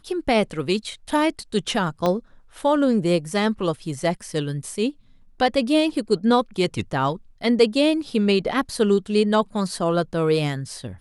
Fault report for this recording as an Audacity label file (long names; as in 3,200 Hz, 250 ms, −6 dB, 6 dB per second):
2.060000	2.060000	click −10 dBFS